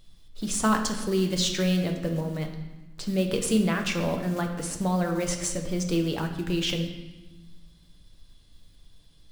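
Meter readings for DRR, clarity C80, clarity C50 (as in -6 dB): 3.0 dB, 9.0 dB, 7.0 dB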